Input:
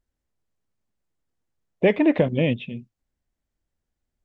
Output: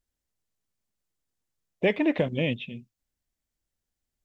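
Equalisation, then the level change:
high-shelf EQ 2,600 Hz +10 dB
−6.0 dB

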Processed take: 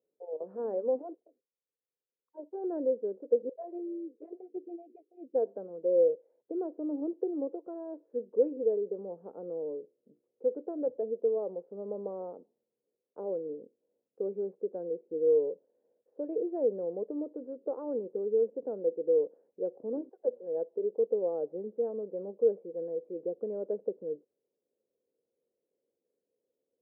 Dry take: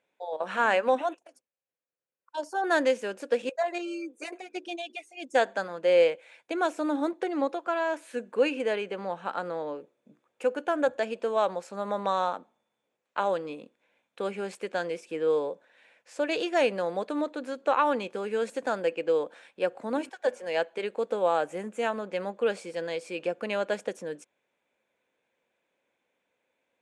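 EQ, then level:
transistor ladder low-pass 490 Hz, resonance 65%
+2.0 dB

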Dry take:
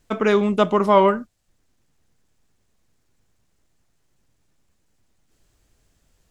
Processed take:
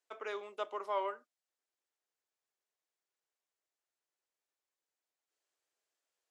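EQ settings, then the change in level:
high-pass filter 320 Hz 24 dB per octave
resonant band-pass 470 Hz, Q 0.67
first difference
+1.5 dB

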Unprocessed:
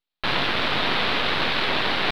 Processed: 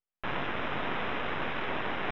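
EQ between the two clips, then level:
moving average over 10 samples
−7.5 dB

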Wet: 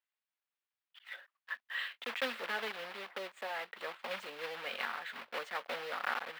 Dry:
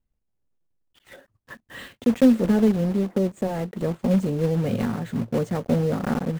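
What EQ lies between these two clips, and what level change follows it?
high-pass filter 1,200 Hz 12 dB per octave
high-frequency loss of the air 410 metres
spectral tilt +4.5 dB per octave
+3.0 dB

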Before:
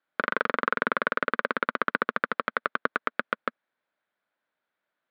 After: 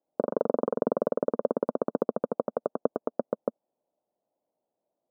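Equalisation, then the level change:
Butterworth low-pass 770 Hz 36 dB per octave
low-shelf EQ 240 Hz −7.5 dB
+8.5 dB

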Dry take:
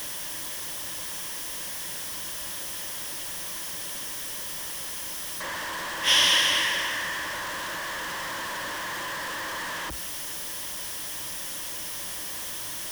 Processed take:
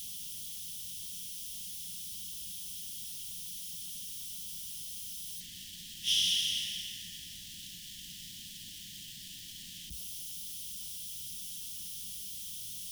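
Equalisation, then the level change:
elliptic band-stop filter 210–3,100 Hz, stop band 50 dB
−7.0 dB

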